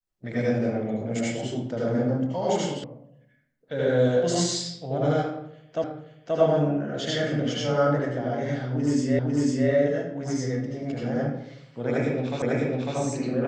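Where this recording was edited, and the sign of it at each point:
2.84 sound cut off
5.84 repeat of the last 0.53 s
9.19 repeat of the last 0.5 s
12.42 repeat of the last 0.55 s

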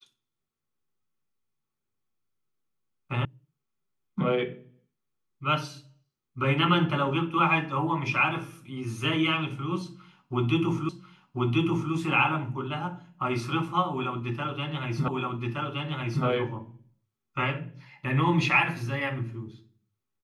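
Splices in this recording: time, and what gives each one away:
3.25 sound cut off
10.89 repeat of the last 1.04 s
15.08 repeat of the last 1.17 s

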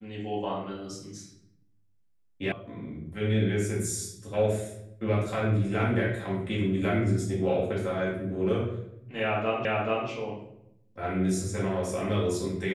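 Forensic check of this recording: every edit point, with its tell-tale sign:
2.52 sound cut off
9.65 repeat of the last 0.43 s

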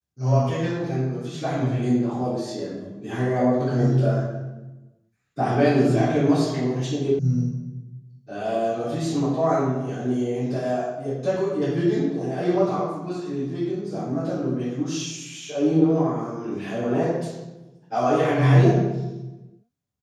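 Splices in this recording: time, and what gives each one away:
7.19 sound cut off

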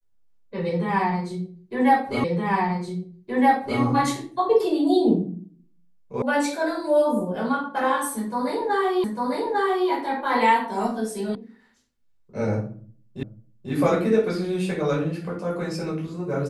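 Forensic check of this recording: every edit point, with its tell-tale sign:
2.24 repeat of the last 1.57 s
6.22 sound cut off
9.04 repeat of the last 0.85 s
11.35 sound cut off
13.23 repeat of the last 0.49 s

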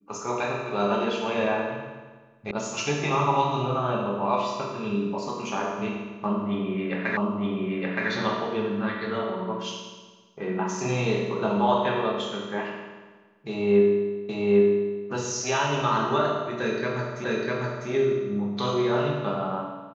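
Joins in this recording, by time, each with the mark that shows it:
2.51 sound cut off
7.17 repeat of the last 0.92 s
14.29 repeat of the last 0.8 s
17.24 repeat of the last 0.65 s

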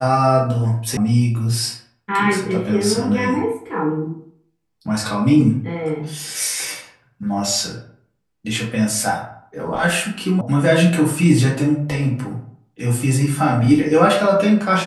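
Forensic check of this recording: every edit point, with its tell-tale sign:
0.97 sound cut off
10.41 sound cut off

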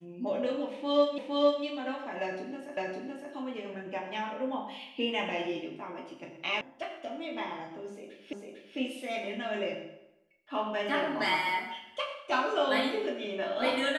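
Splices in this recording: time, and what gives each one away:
1.18 repeat of the last 0.46 s
2.77 repeat of the last 0.56 s
6.61 sound cut off
8.33 repeat of the last 0.45 s

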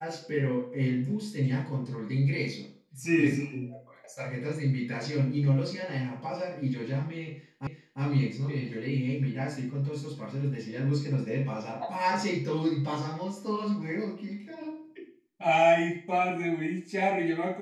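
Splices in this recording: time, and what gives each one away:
7.67 repeat of the last 0.35 s

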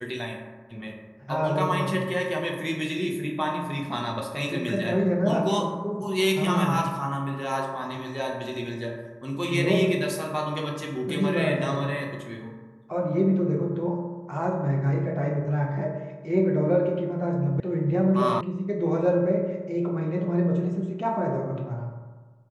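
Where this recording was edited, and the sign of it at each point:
17.6 sound cut off
18.41 sound cut off

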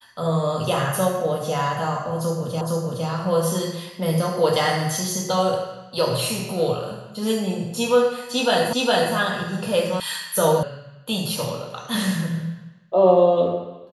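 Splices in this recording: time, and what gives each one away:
2.61 repeat of the last 0.46 s
8.73 repeat of the last 0.41 s
10 sound cut off
10.63 sound cut off

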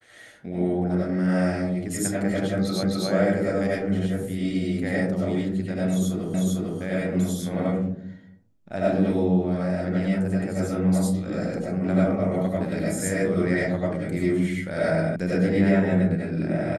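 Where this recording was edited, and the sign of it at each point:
2.83 repeat of the last 0.26 s
6.34 repeat of the last 0.45 s
15.16 sound cut off

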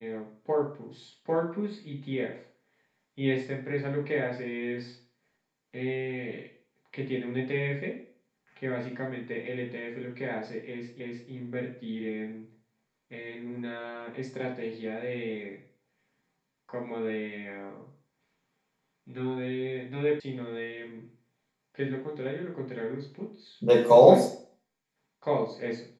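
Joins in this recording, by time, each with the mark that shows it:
11 repeat of the last 0.31 s
20.2 sound cut off

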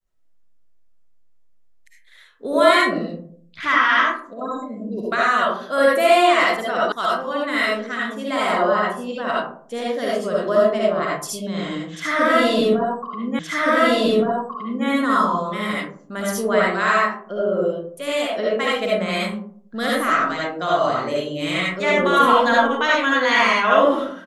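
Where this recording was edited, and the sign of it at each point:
6.92 sound cut off
13.39 repeat of the last 1.47 s

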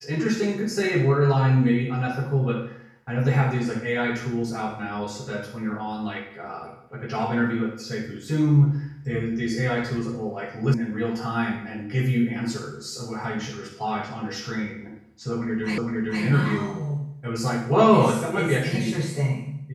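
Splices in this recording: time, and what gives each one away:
10.74 sound cut off
15.78 repeat of the last 0.46 s

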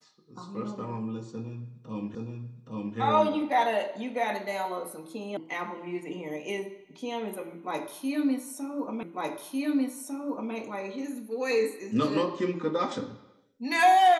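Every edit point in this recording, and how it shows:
2.15 repeat of the last 0.82 s
5.37 sound cut off
9.03 repeat of the last 1.5 s

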